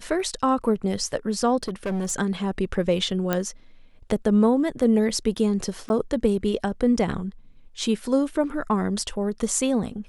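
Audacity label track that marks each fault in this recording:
1.630000	2.120000	clipped -23 dBFS
3.330000	3.330000	pop -9 dBFS
5.890000	5.900000	dropout 11 ms

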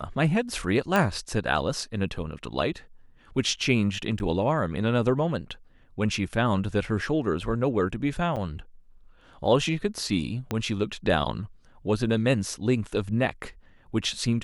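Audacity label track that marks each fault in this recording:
0.960000	0.960000	pop -10 dBFS
4.190000	4.200000	dropout 9.8 ms
8.360000	8.370000	dropout 6.8 ms
10.510000	10.510000	pop -14 dBFS

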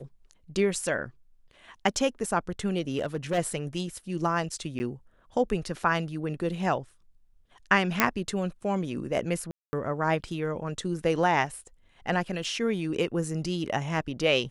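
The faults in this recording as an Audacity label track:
0.750000	0.750000	dropout 4.2 ms
2.970000	3.390000	clipped -23 dBFS
4.790000	4.800000	dropout 10 ms
8.000000	8.000000	pop -4 dBFS
9.510000	9.730000	dropout 220 ms
12.440000	12.440000	dropout 4 ms

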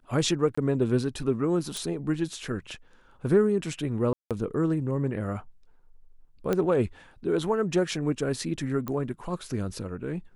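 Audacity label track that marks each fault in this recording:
0.550000	0.570000	dropout 25 ms
1.770000	1.770000	pop
4.130000	4.310000	dropout 177 ms
6.530000	6.530000	pop -13 dBFS
8.880000	8.880000	pop -19 dBFS

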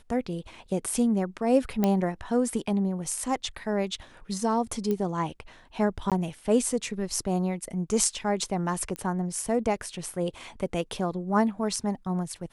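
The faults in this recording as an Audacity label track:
1.840000	1.840000	pop -11 dBFS
4.910000	4.910000	pop -17 dBFS
6.100000	6.120000	dropout 17 ms
8.960000	8.960000	pop -20 dBFS

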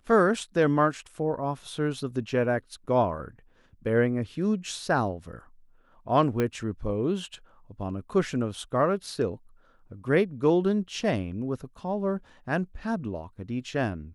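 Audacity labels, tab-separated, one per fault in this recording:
6.400000	6.400000	pop -14 dBFS

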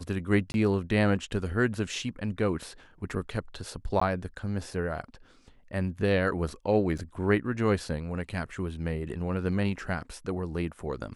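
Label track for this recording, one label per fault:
0.520000	0.540000	dropout 21 ms
4.000000	4.010000	dropout 14 ms
6.980000	6.990000	dropout 6.1 ms

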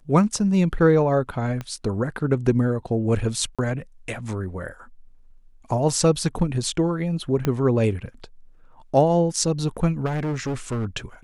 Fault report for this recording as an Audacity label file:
1.610000	1.610000	pop -18 dBFS
3.550000	3.590000	dropout 36 ms
7.450000	7.450000	pop -10 dBFS
10.050000	10.860000	clipped -22.5 dBFS

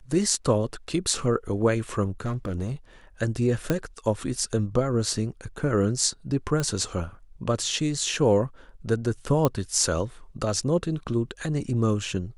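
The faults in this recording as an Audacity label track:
2.250000	2.720000	clipped -24 dBFS
3.700000	3.700000	pop -10 dBFS
6.600000	6.600000	pop -14 dBFS
9.450000	9.450000	pop -9 dBFS

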